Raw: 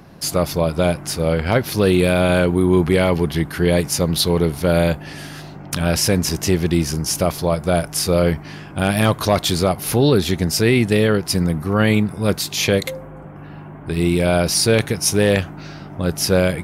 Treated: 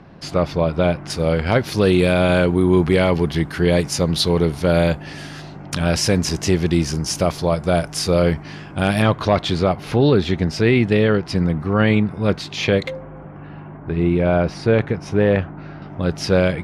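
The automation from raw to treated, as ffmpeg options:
-af "asetnsamples=n=441:p=0,asendcmd='1.1 lowpass f 7400;9.02 lowpass f 3400;13.77 lowpass f 1800;15.82 lowpass f 4200',lowpass=3400"

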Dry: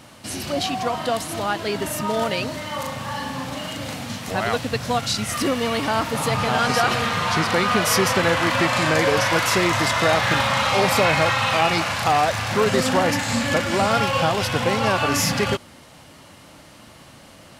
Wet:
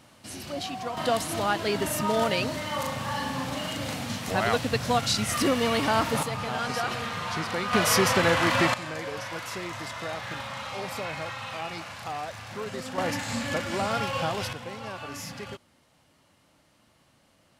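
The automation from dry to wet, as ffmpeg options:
-af "asetnsamples=n=441:p=0,asendcmd='0.97 volume volume -2dB;6.23 volume volume -10dB;7.73 volume volume -3dB;8.74 volume volume -16dB;12.98 volume volume -8.5dB;14.53 volume volume -17.5dB',volume=0.335"

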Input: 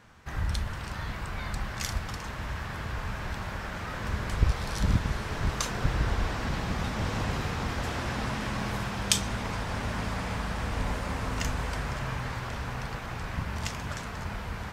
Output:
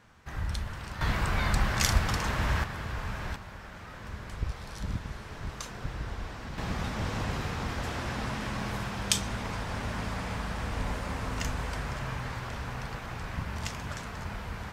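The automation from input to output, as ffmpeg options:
-af "asetnsamples=n=441:p=0,asendcmd='1.01 volume volume 7dB;2.64 volume volume -1dB;3.36 volume volume -9dB;6.58 volume volume -2dB',volume=0.708"

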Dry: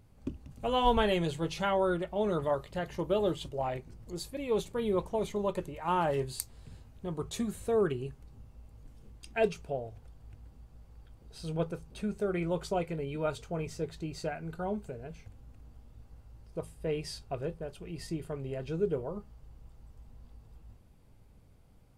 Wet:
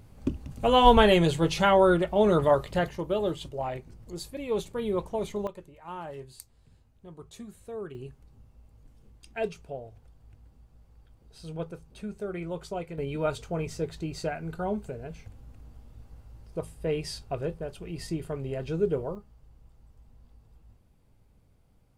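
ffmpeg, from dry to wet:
-af "asetnsamples=n=441:p=0,asendcmd='2.89 volume volume 1dB;5.47 volume volume -10dB;7.95 volume volume -3dB;12.98 volume volume 4dB;19.15 volume volume -3dB',volume=2.66"

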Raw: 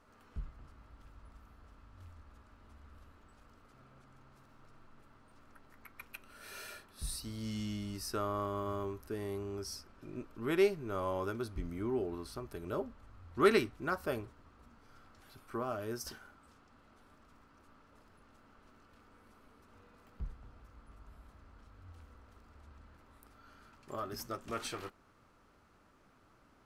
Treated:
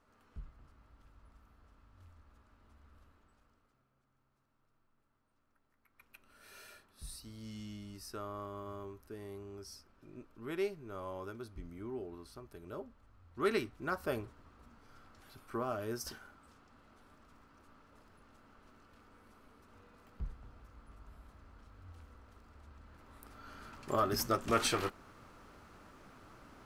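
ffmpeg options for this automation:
-af "volume=11.2,afade=t=out:st=3.02:d=0.84:silence=0.251189,afade=t=in:st=5.86:d=0.45:silence=0.316228,afade=t=in:st=13.37:d=0.81:silence=0.398107,afade=t=in:st=22.83:d=0.93:silence=0.375837"

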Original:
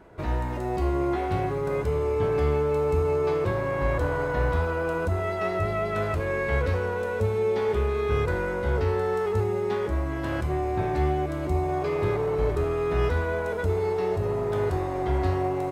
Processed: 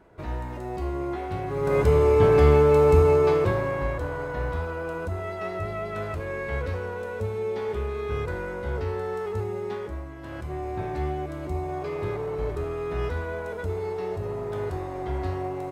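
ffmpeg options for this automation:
-af "volume=5.01,afade=t=in:st=1.46:d=0.4:silence=0.266073,afade=t=out:st=2.94:d=1.02:silence=0.266073,afade=t=out:st=9.67:d=0.49:silence=0.446684,afade=t=in:st=10.16:d=0.52:silence=0.446684"

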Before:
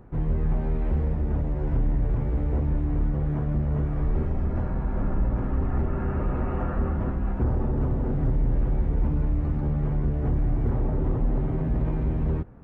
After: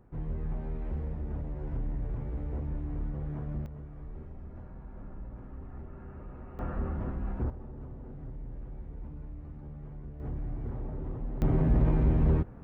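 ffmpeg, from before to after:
-af "asetnsamples=n=441:p=0,asendcmd='3.66 volume volume -18.5dB;6.59 volume volume -7.5dB;7.5 volume volume -18.5dB;10.2 volume volume -12dB;11.42 volume volume 1dB',volume=0.316"

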